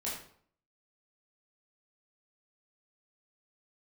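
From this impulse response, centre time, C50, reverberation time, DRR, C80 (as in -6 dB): 44 ms, 3.5 dB, 0.60 s, -7.0 dB, 7.0 dB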